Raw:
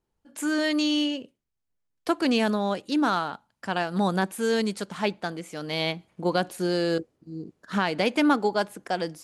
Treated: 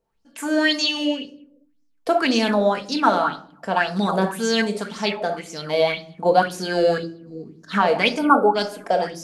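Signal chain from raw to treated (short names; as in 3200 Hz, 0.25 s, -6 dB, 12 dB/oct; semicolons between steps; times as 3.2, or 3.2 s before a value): spectral gain 8.18–8.54, 1600–8200 Hz -25 dB; reverb RT60 0.60 s, pre-delay 4 ms, DRR 3.5 dB; LFO bell 1.9 Hz 510–6100 Hz +15 dB; gain -1 dB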